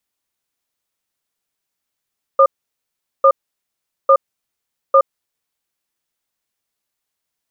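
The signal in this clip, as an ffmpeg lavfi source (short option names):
-f lavfi -i "aevalsrc='0.355*(sin(2*PI*544*t)+sin(2*PI*1210*t))*clip(min(mod(t,0.85),0.07-mod(t,0.85))/0.005,0,1)':d=2.67:s=44100"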